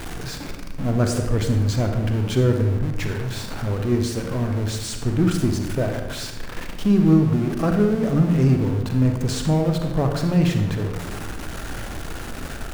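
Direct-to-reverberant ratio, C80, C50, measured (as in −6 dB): 4.0 dB, 7.5 dB, 5.5 dB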